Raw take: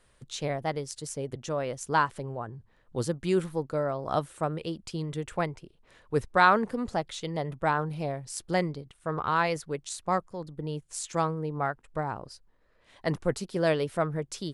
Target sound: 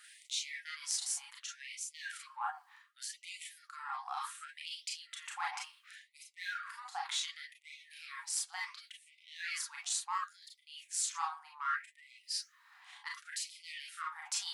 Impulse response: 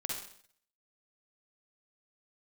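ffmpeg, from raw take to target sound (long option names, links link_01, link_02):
-filter_complex "[0:a]flanger=delay=6.4:depth=4.3:regen=87:speed=1.6:shape=sinusoidal,asplit=2[link_01][link_02];[link_02]asoftclip=type=tanh:threshold=-30dB,volume=-5dB[link_03];[link_01][link_03]amix=inputs=2:normalize=0,highpass=frequency=93:poles=1[link_04];[1:a]atrim=start_sample=2205,atrim=end_sample=3969,asetrate=70560,aresample=44100[link_05];[link_04][link_05]afir=irnorm=-1:irlink=0,areverse,acompressor=threshold=-48dB:ratio=6,areverse,afftfilt=real='re*gte(b*sr/1024,700*pow(2000/700,0.5+0.5*sin(2*PI*0.68*pts/sr)))':imag='im*gte(b*sr/1024,700*pow(2000/700,0.5+0.5*sin(2*PI*0.68*pts/sr)))':win_size=1024:overlap=0.75,volume=17dB"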